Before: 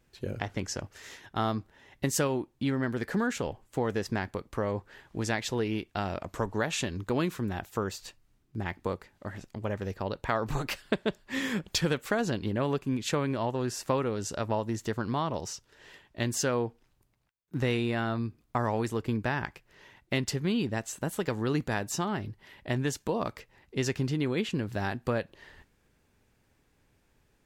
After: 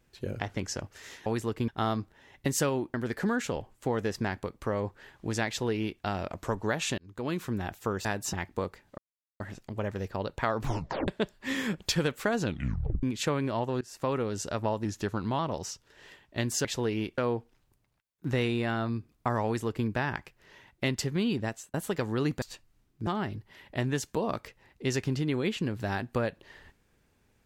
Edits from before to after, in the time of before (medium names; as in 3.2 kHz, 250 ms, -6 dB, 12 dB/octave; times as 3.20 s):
2.52–2.85 s: delete
5.39–5.92 s: copy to 16.47 s
6.89–7.38 s: fade in
7.96–8.61 s: swap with 21.71–21.99 s
9.26 s: insert silence 0.42 s
10.50 s: tape stop 0.44 s
12.28 s: tape stop 0.61 s
13.67–14.02 s: fade in, from -23 dB
14.71–15.21 s: speed 93%
18.74–19.16 s: copy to 1.26 s
20.75–21.03 s: fade out